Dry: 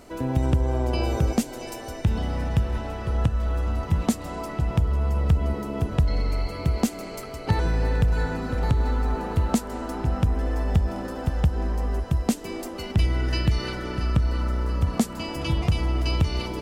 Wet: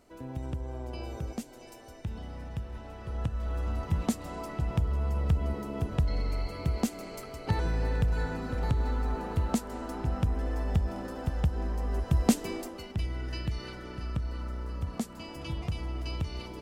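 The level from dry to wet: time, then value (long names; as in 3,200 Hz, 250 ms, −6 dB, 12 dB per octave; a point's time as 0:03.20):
0:02.70 −14 dB
0:03.68 −6 dB
0:11.83 −6 dB
0:12.36 +1 dB
0:12.91 −11 dB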